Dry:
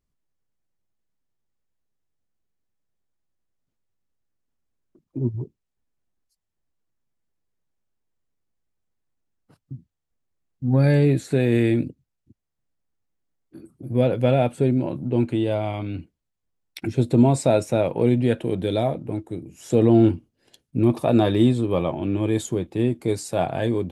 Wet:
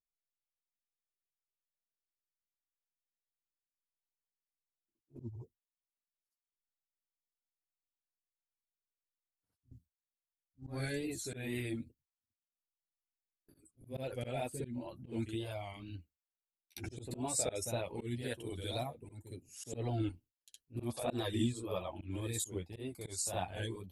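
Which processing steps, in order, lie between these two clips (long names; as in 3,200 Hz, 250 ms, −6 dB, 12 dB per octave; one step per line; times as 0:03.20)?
first-order pre-emphasis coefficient 0.8
noise gate with hold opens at −47 dBFS
reverb reduction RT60 1.1 s
low shelf with overshoot 100 Hz +12 dB, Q 1.5
backwards echo 63 ms −6 dB
harmonic and percussive parts rebalanced harmonic −4 dB
tape wow and flutter 79 cents
flanger 0.15 Hz, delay 6.8 ms, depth 4.5 ms, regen −20%
volume swells 134 ms
level +4 dB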